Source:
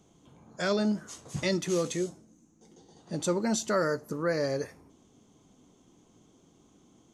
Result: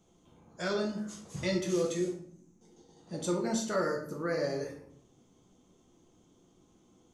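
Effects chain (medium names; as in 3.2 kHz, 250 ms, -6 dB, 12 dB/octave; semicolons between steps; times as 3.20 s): simulated room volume 85 m³, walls mixed, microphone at 0.78 m; trim -6.5 dB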